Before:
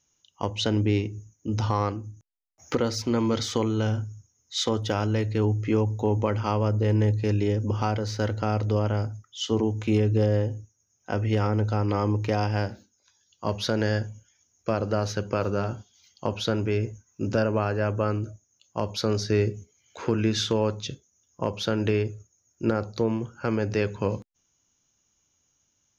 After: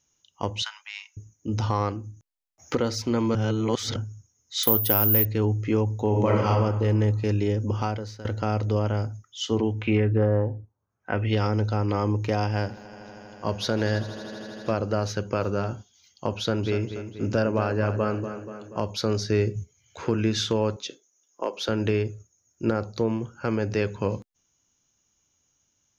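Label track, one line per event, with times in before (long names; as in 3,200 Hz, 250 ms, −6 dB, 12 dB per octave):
0.620000	1.170000	Butterworth high-pass 960 Hz 48 dB per octave
3.350000	3.960000	reverse
4.630000	5.250000	bad sample-rate conversion rate divided by 3×, down filtered, up zero stuff
6.080000	6.480000	thrown reverb, RT60 1.3 s, DRR −2.5 dB
7.780000	8.250000	fade out, to −18 dB
9.570000	11.690000	auto-filter low-pass sine 0.25 Hz → 0.73 Hz 920–5,400 Hz
12.450000	14.740000	echo that builds up and dies away 80 ms, loudest repeat 5, its level −18 dB
16.390000	18.820000	feedback echo with a low-pass in the loop 240 ms, feedback 58%, low-pass 4,600 Hz, level −9.5 dB
19.550000	20.060000	low shelf with overshoot 180 Hz +8 dB, Q 1.5
20.760000	21.690000	high-pass filter 300 Hz 24 dB per octave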